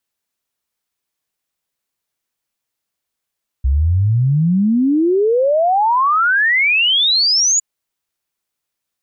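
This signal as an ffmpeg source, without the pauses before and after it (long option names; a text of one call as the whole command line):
ffmpeg -f lavfi -i "aevalsrc='0.282*clip(min(t,3.96-t)/0.01,0,1)*sin(2*PI*63*3.96/log(7000/63)*(exp(log(7000/63)*t/3.96)-1))':duration=3.96:sample_rate=44100" out.wav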